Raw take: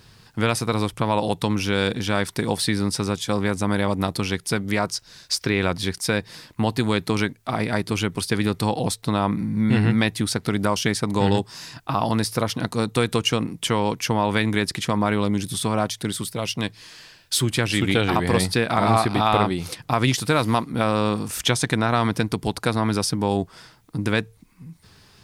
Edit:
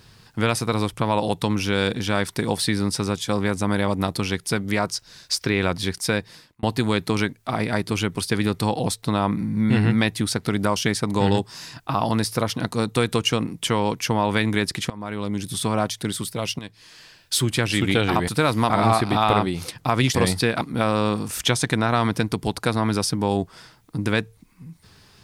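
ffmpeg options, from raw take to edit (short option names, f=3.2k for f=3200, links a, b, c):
-filter_complex "[0:a]asplit=8[a][b][c][d][e][f][g][h];[a]atrim=end=6.63,asetpts=PTS-STARTPTS,afade=t=out:st=6.14:d=0.49[i];[b]atrim=start=6.63:end=14.9,asetpts=PTS-STARTPTS,afade=t=in:d=0.004:c=hsin,afade=t=out:st=8.266:d=0.004:c=hsin:silence=0.1[j];[c]atrim=start=14.9:end=16.59,asetpts=PTS-STARTPTS,afade=t=in:d=0.72:silence=0.1,afade=t=out:st=1.686:d=0.004:c=hsin:silence=0.211349[k];[d]atrim=start=16.59:end=18.282,asetpts=PTS-STARTPTS,afade=t=in:d=0.83:c=qsin:silence=0.211349[l];[e]atrim=start=20.188:end=20.612[m];[f]atrim=start=18.738:end=20.192[n];[g]atrim=start=18.278:end=18.742[o];[h]atrim=start=20.608[p];[i][j][k][l]concat=n=4:v=0:a=1[q];[q][m]acrossfade=d=0.004:c1=hsin:c2=hsin[r];[r][n]acrossfade=d=0.004:c1=hsin:c2=hsin[s];[s][o]acrossfade=d=0.004:c1=hsin:c2=hsin[t];[t][p]acrossfade=d=0.004:c1=hsin:c2=hsin"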